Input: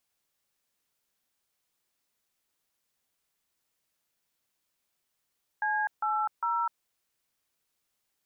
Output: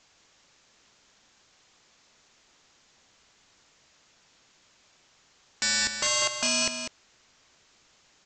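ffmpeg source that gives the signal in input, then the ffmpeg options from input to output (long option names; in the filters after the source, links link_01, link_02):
-f lavfi -i "aevalsrc='0.0376*clip(min(mod(t,0.403),0.252-mod(t,0.403))/0.002,0,1)*(eq(floor(t/0.403),0)*(sin(2*PI*852*mod(t,0.403))+sin(2*PI*1633*mod(t,0.403)))+eq(floor(t/0.403),1)*(sin(2*PI*852*mod(t,0.403))+sin(2*PI*1336*mod(t,0.403)))+eq(floor(t/0.403),2)*(sin(2*PI*941*mod(t,0.403))+sin(2*PI*1336*mod(t,0.403))))':duration=1.209:sample_rate=44100"
-filter_complex "[0:a]aresample=16000,aeval=exprs='0.0794*sin(PI/2*7.08*val(0)/0.0794)':channel_layout=same,aresample=44100,asplit=2[link_01][link_02];[link_02]adelay=198.3,volume=-7dB,highshelf=frequency=4000:gain=-4.46[link_03];[link_01][link_03]amix=inputs=2:normalize=0"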